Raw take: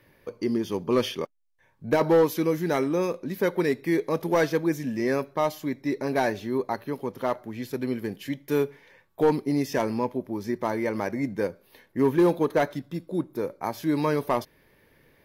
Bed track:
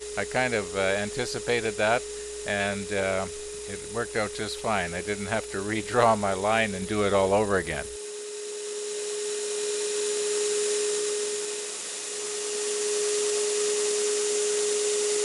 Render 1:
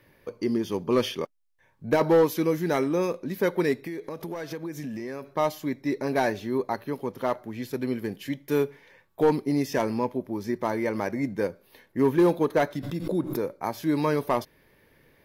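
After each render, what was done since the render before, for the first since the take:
0:03.84–0:05.31: downward compressor 16 to 1, threshold −30 dBFS
0:12.75–0:13.48: background raised ahead of every attack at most 59 dB per second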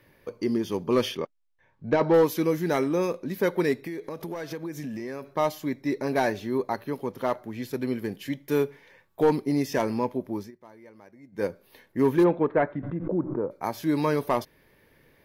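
0:01.17–0:02.14: high-frequency loss of the air 130 metres
0:10.39–0:11.44: duck −22.5 dB, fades 0.12 s
0:12.23–0:13.50: low-pass filter 2,800 Hz → 1,200 Hz 24 dB per octave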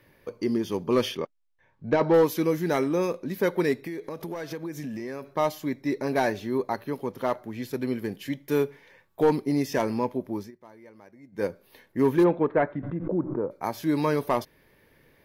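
no processing that can be heard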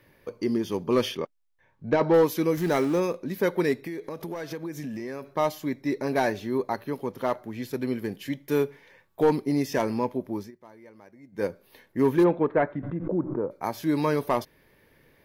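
0:02.57–0:03.00: converter with a step at zero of −34.5 dBFS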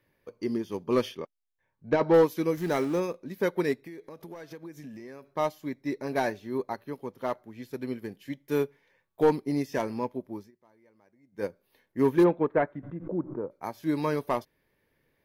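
expander for the loud parts 1.5 to 1, over −41 dBFS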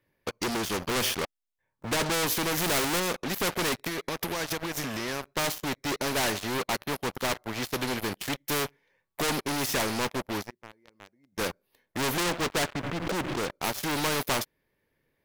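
leveller curve on the samples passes 5
every bin compressed towards the loudest bin 2 to 1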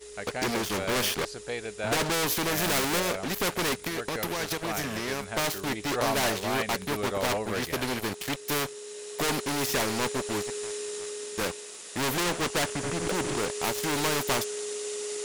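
mix in bed track −8.5 dB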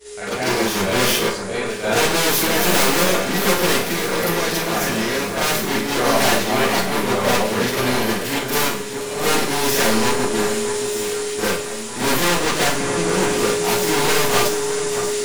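delay that swaps between a low-pass and a high-pass 618 ms, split 2,000 Hz, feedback 71%, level −8.5 dB
four-comb reverb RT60 0.41 s, combs from 32 ms, DRR −9 dB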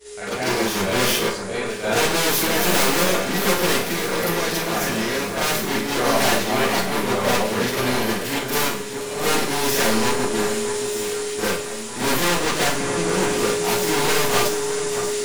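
level −2 dB

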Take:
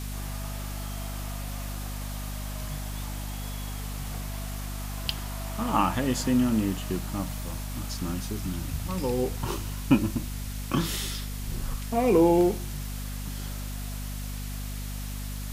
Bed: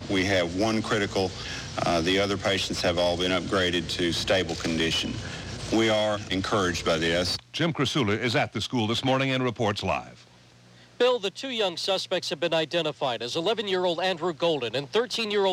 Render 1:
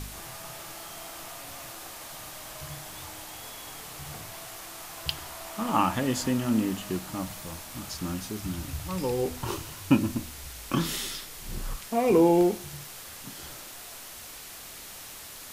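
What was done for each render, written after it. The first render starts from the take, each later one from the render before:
hum removal 50 Hz, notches 5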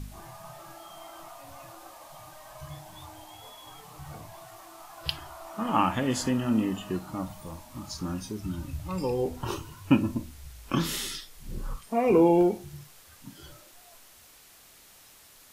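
noise reduction from a noise print 11 dB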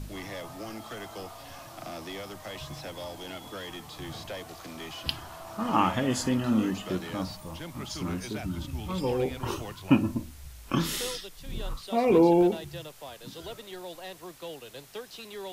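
mix in bed −16 dB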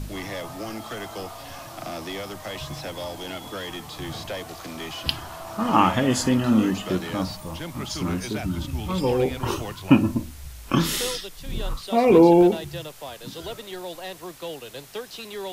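level +6 dB
brickwall limiter −3 dBFS, peak gain reduction 1 dB

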